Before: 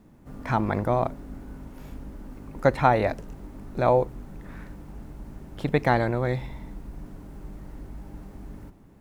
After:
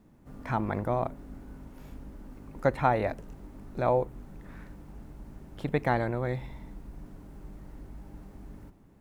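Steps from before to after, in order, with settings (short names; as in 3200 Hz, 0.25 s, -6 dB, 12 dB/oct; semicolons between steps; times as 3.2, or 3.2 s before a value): dynamic EQ 5000 Hz, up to -5 dB, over -50 dBFS, Q 1.3; gain -5 dB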